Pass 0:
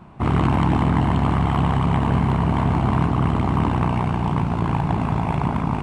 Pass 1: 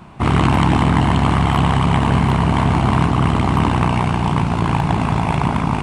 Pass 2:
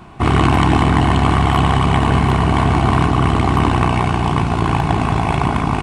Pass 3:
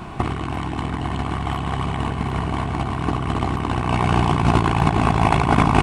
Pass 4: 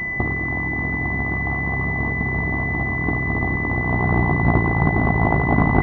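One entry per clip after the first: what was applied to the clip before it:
high-shelf EQ 2,100 Hz +9.5 dB; level +3.5 dB
comb filter 2.7 ms, depth 32%; level +1.5 dB
compressor whose output falls as the input rises −19 dBFS, ratio −0.5
switching amplifier with a slow clock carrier 2,000 Hz

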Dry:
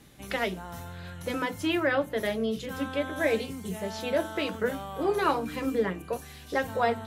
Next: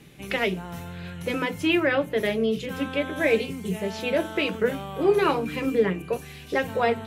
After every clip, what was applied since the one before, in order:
graphic EQ with 15 bands 160 Hz +9 dB, 400 Hz +7 dB, 2,500 Hz +9 dB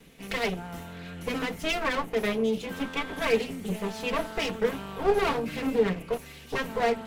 lower of the sound and its delayed copy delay 4.4 ms
level −2 dB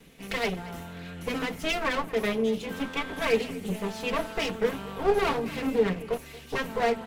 single-tap delay 230 ms −19 dB

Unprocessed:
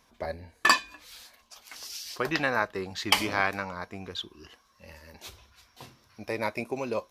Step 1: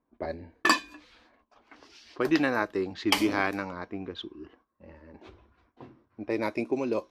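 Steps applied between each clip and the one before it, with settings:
noise gate −60 dBFS, range −12 dB
low-pass that shuts in the quiet parts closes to 1,200 Hz, open at −25 dBFS
parametric band 310 Hz +12.5 dB 0.81 octaves
level −2.5 dB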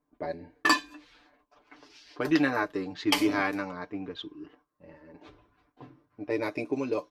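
comb filter 6.8 ms, depth 73%
level −2.5 dB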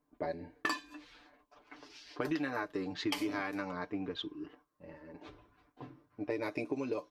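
downward compressor 6 to 1, threshold −32 dBFS, peak gain reduction 14 dB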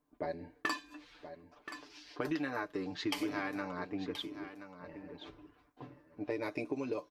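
single-tap delay 1,027 ms −11.5 dB
level −1 dB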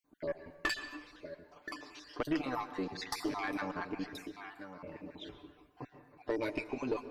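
time-frequency cells dropped at random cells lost 37%
tube saturation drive 28 dB, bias 0.4
convolution reverb RT60 1.1 s, pre-delay 112 ms, DRR 10.5 dB
level +5 dB

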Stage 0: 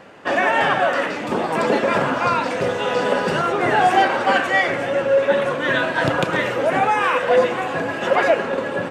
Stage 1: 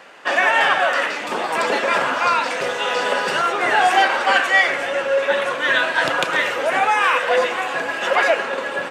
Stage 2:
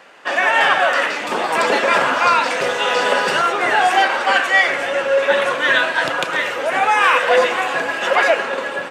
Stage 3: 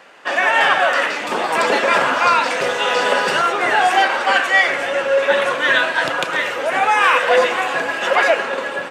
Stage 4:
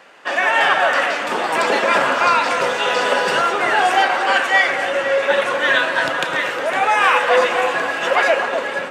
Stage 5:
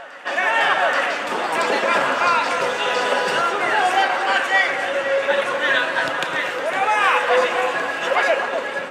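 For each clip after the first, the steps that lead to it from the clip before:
high-pass filter 1,300 Hz 6 dB per octave; level +5.5 dB
automatic gain control; level −1.5 dB
no processing that can be heard
delay that swaps between a low-pass and a high-pass 254 ms, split 1,500 Hz, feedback 54%, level −7 dB; level −1 dB
backwards echo 828 ms −19.5 dB; level −2.5 dB

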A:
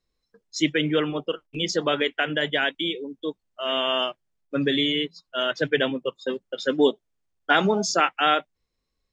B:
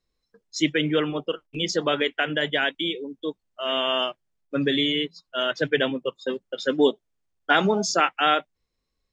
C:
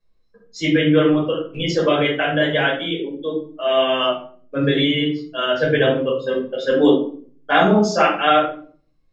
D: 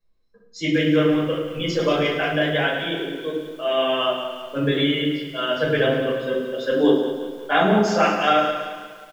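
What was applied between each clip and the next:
no processing that can be heard
high-shelf EQ 4,100 Hz −10.5 dB; convolution reverb RT60 0.45 s, pre-delay 6 ms, DRR −5.5 dB; level −2 dB
repeating echo 107 ms, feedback 59%, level −10.5 dB; feedback echo at a low word length 179 ms, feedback 55%, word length 7 bits, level −10.5 dB; level −3.5 dB

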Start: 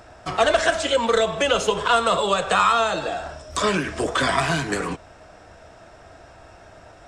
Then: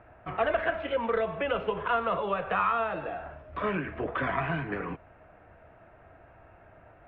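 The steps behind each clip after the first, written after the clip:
Butterworth low-pass 2,600 Hz 36 dB per octave
parametric band 120 Hz +3 dB 1.2 octaves
level −8.5 dB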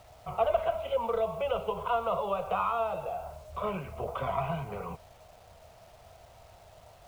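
phaser with its sweep stopped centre 720 Hz, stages 4
bit-depth reduction 10 bits, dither none
level +1.5 dB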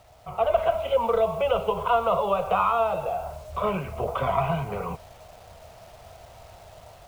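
automatic gain control gain up to 7 dB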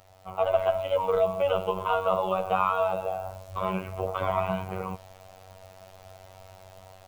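phases set to zero 94 Hz

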